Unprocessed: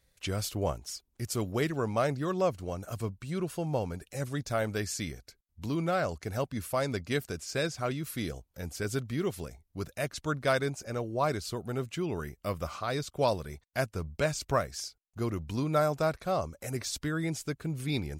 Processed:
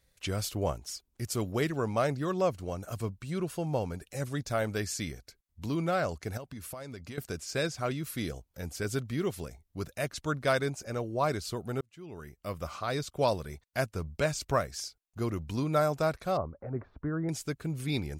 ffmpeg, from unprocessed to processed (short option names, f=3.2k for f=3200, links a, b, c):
-filter_complex "[0:a]asettb=1/sr,asplit=3[a][b][c];[a]atrim=end=6.374[d];[b]atrim=start=6.37:end=7.18,asetpts=PTS-STARTPTS,afade=t=in:d=0.004:c=qsin,afade=t=out:st=0.806:d=0.004:c=qsin,acompressor=threshold=-38dB:ratio=10:attack=3.2:release=140:knee=1:detection=peak[e];[c]atrim=start=7.176[f];[d][e]acrossfade=d=0.004:c1=hsin:c2=qsin[g];[g][f]acrossfade=d=0.004:c1=qsin:c2=hsin,asettb=1/sr,asplit=3[h][i][j];[h]atrim=end=16.374[k];[i]atrim=start=16.37:end=17.29,asetpts=PTS-STARTPTS,afade=t=in:d=0.004:c=qsin,afade=t=out:st=0.916:d=0.004:c=qsin,lowpass=f=1.3k:w=0.5412,lowpass=f=1.3k:w=1.3066[l];[j]atrim=start=17.286[m];[k][l]acrossfade=d=0.004:c1=hsin:c2=qsin[n];[n][m]acrossfade=d=0.004:c1=qsin:c2=hsin,asplit=2[o][p];[o]atrim=end=11.81,asetpts=PTS-STARTPTS,afade=t=out:st=11.806:d=0.004:c=hsin[q];[p]atrim=start=11.81,asetpts=PTS-STARTPTS,afade=t=in:d=1.05[r];[q][r]concat=n=2:v=0:a=1"